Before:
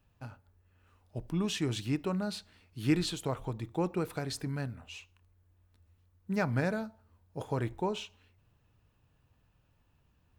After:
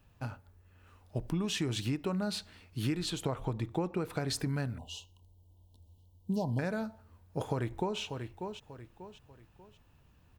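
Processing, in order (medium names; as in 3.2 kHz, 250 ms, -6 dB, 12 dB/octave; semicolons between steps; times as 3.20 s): 3.10–4.28 s: treble shelf 5.7 kHz -6 dB; 4.78–6.59 s: Chebyshev band-stop 1–2.9 kHz, order 5; 7.44–8.00 s: echo throw 590 ms, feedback 35%, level -13.5 dB; compression 10:1, threshold -35 dBFS, peak gain reduction 14 dB; trim +6 dB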